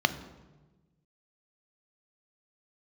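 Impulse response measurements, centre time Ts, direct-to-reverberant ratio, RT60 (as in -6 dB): 7 ms, 11.0 dB, 1.2 s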